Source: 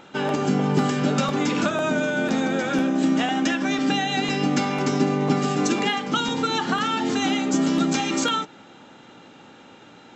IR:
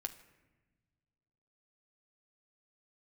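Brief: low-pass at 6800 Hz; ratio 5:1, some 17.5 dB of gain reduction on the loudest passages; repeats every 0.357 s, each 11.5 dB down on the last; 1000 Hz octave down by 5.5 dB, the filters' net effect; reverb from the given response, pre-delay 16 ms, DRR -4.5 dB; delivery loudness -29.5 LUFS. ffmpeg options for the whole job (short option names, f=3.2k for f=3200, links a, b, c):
-filter_complex "[0:a]lowpass=6.8k,equalizer=f=1k:t=o:g=-8,acompressor=threshold=-38dB:ratio=5,aecho=1:1:357|714|1071:0.266|0.0718|0.0194,asplit=2[a][b];[1:a]atrim=start_sample=2205,adelay=16[c];[b][c]afir=irnorm=-1:irlink=0,volume=6dB[d];[a][d]amix=inputs=2:normalize=0,volume=4dB"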